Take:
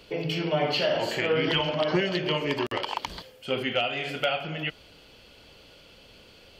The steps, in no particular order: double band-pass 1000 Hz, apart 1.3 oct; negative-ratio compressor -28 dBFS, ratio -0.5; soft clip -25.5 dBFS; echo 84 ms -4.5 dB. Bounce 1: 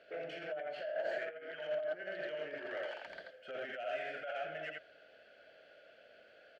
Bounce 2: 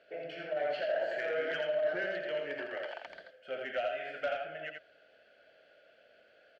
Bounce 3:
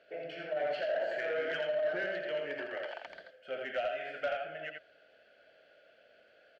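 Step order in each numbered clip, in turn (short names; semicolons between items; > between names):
echo > negative-ratio compressor > soft clip > double band-pass; double band-pass > negative-ratio compressor > soft clip > echo; double band-pass > negative-ratio compressor > echo > soft clip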